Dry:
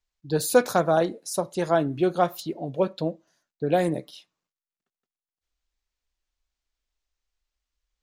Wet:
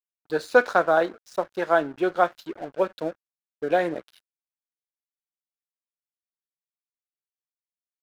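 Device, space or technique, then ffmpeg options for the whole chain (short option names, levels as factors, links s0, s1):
pocket radio on a weak battery: -af "highpass=350,lowpass=3700,aeval=exprs='sgn(val(0))*max(abs(val(0))-0.00501,0)':c=same,equalizer=f=1500:t=o:w=0.55:g=7,volume=1.19"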